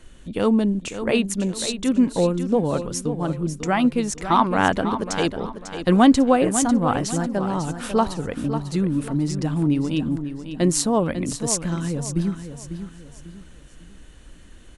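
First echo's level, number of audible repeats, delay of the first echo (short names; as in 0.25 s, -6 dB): -10.0 dB, 3, 0.547 s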